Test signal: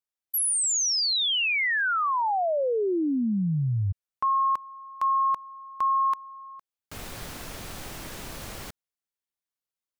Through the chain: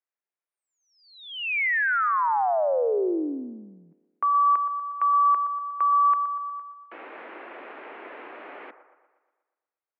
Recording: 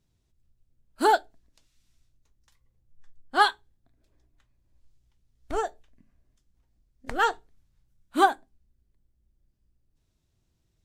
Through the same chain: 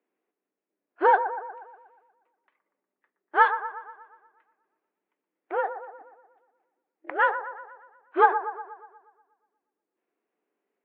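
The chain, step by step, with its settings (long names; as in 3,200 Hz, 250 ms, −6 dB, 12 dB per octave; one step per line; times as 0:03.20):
single-sideband voice off tune +70 Hz 250–2,400 Hz
delay with a band-pass on its return 120 ms, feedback 54%, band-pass 820 Hz, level −10 dB
level +1.5 dB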